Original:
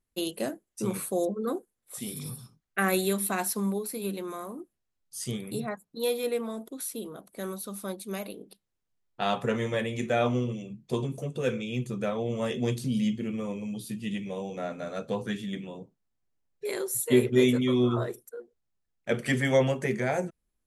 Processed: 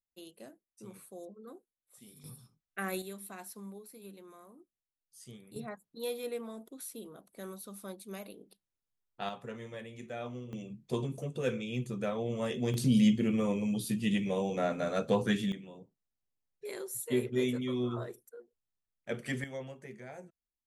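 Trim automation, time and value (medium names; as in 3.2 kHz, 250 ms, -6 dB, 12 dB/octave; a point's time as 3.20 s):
-19 dB
from 2.24 s -10.5 dB
from 3.02 s -17 dB
from 5.56 s -8.5 dB
from 9.29 s -15 dB
from 10.53 s -4 dB
from 12.74 s +3 dB
from 15.52 s -9 dB
from 19.44 s -19 dB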